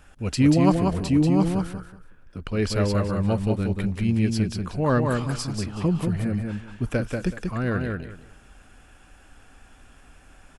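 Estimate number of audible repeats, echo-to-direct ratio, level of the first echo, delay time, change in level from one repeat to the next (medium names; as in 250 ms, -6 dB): 3, -4.0 dB, -4.0 dB, 187 ms, -13.0 dB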